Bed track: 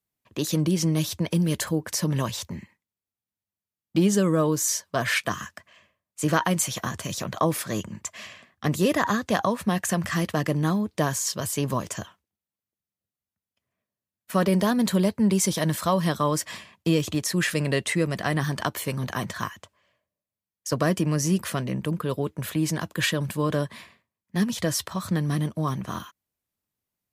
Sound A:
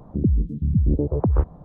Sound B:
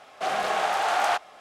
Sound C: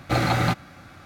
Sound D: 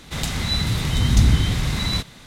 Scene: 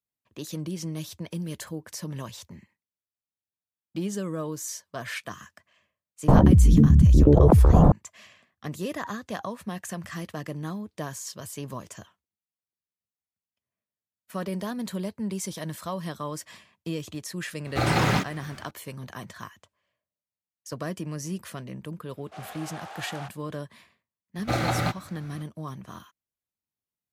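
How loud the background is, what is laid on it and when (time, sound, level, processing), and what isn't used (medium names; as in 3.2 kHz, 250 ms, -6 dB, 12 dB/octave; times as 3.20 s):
bed track -10 dB
6.28 s: add A -0.5 dB + level flattener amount 100%
17.66 s: add C -3 dB + ever faster or slower copies 118 ms, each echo +4 st, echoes 2
22.11 s: add B -16.5 dB
24.38 s: add C -4.5 dB + peaking EQ 640 Hz +4 dB 0.28 oct
not used: D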